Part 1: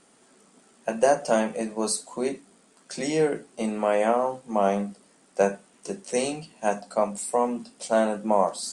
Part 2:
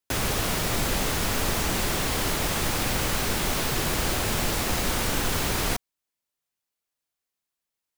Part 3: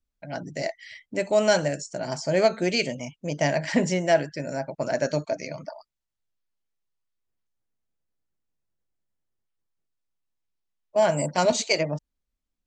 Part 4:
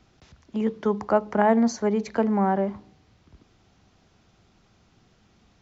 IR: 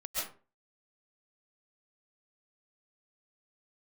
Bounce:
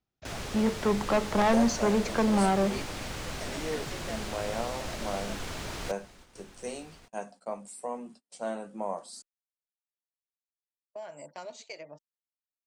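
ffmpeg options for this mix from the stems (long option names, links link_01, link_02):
-filter_complex "[0:a]adelay=500,volume=-12.5dB[link_01];[1:a]acrossover=split=8900[link_02][link_03];[link_03]acompressor=threshold=-48dB:ratio=4:attack=1:release=60[link_04];[link_02][link_04]amix=inputs=2:normalize=0,adelay=150,volume=-11dB,asplit=2[link_05][link_06];[link_06]volume=-16.5dB[link_07];[2:a]bass=frequency=250:gain=-14,treble=frequency=4000:gain=-4,acompressor=threshold=-35dB:ratio=3,volume=-8.5dB[link_08];[3:a]asoftclip=type=tanh:threshold=-22dB,volume=2dB[link_09];[link_07]aecho=0:1:1166:1[link_10];[link_01][link_05][link_08][link_09][link_10]amix=inputs=5:normalize=0,agate=range=-29dB:threshold=-52dB:ratio=16:detection=peak"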